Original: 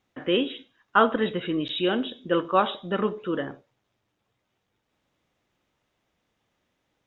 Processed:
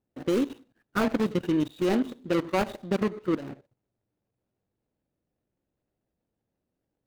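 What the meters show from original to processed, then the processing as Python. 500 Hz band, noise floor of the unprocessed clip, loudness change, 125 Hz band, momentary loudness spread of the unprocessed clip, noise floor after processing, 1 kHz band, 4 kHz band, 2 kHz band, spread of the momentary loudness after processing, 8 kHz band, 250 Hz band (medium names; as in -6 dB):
-3.0 dB, -78 dBFS, -2.5 dB, +2.5 dB, 9 LU, -84 dBFS, -8.0 dB, -10.0 dB, -6.0 dB, 5 LU, no reading, +1.5 dB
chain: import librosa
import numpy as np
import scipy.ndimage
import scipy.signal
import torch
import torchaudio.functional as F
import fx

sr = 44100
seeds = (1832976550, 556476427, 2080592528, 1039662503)

y = scipy.ndimage.median_filter(x, 41, mode='constant')
y = fx.dynamic_eq(y, sr, hz=480.0, q=2.8, threshold_db=-42.0, ratio=4.0, max_db=-5)
y = fx.level_steps(y, sr, step_db=15)
y = F.gain(torch.from_numpy(y), 7.0).numpy()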